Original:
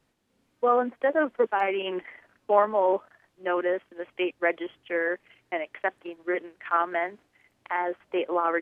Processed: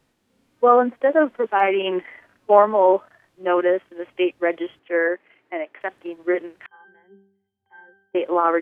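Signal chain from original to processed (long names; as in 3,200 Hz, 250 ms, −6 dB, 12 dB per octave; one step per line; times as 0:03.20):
harmonic and percussive parts rebalanced harmonic +9 dB
0:04.79–0:05.81: three-way crossover with the lows and the highs turned down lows −19 dB, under 210 Hz, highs −13 dB, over 2,700 Hz
0:06.66–0:08.15: resonances in every octave G, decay 0.62 s
level −1 dB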